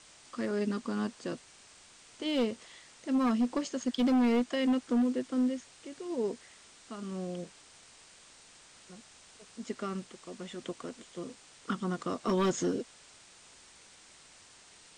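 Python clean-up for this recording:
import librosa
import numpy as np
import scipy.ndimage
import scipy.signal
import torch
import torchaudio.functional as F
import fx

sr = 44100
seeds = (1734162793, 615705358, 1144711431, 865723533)

y = fx.fix_declip(x, sr, threshold_db=-23.0)
y = fx.noise_reduce(y, sr, print_start_s=14.23, print_end_s=14.73, reduce_db=19.0)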